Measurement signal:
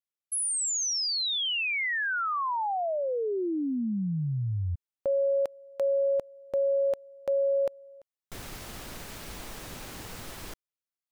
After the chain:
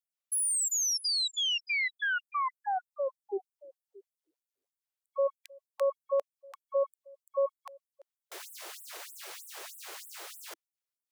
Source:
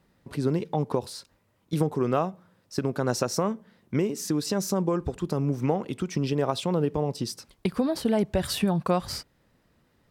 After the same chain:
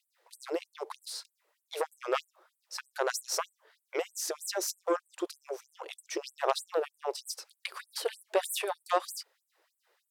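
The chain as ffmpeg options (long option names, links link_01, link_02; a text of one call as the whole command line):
ffmpeg -i in.wav -af "aeval=exprs='0.299*(cos(1*acos(clip(val(0)/0.299,-1,1)))-cos(1*PI/2))+0.0473*(cos(6*acos(clip(val(0)/0.299,-1,1)))-cos(6*PI/2))+0.015*(cos(8*acos(clip(val(0)/0.299,-1,1)))-cos(8*PI/2))':channel_layout=same,afftfilt=real='re*gte(b*sr/1024,320*pow(7900/320,0.5+0.5*sin(2*PI*3.2*pts/sr)))':imag='im*gte(b*sr/1024,320*pow(7900/320,0.5+0.5*sin(2*PI*3.2*pts/sr)))':win_size=1024:overlap=0.75" out.wav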